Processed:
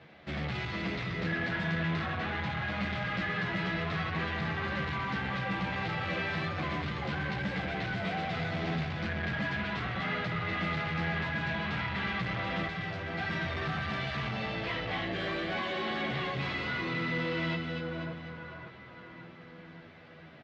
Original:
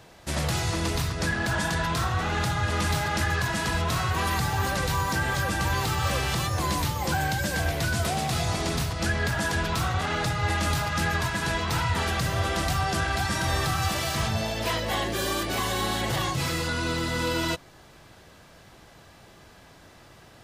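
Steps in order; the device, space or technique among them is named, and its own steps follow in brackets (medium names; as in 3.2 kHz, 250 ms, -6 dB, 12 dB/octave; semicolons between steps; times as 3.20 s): 12.67–13.18 s: amplifier tone stack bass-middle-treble 5-5-5; two-band feedback delay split 1.8 kHz, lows 567 ms, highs 247 ms, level -7 dB; barber-pole flanger into a guitar amplifier (endless flanger 10.4 ms -0.44 Hz; saturation -29 dBFS, distortion -11 dB; cabinet simulation 97–3600 Hz, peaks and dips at 110 Hz -4 dB, 180 Hz +8 dB, 940 Hz -5 dB, 2.1 kHz +6 dB)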